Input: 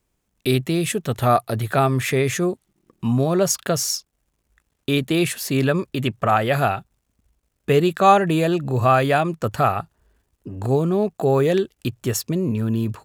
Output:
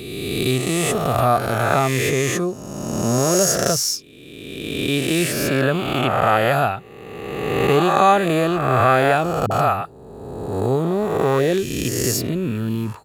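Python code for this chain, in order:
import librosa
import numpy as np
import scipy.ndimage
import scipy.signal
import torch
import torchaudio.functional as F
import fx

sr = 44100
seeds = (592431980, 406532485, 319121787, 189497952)

y = fx.spec_swells(x, sr, rise_s=1.84)
y = fx.dispersion(y, sr, late='highs', ms=50.0, hz=340.0, at=(9.46, 10.53))
y = y * librosa.db_to_amplitude(-2.0)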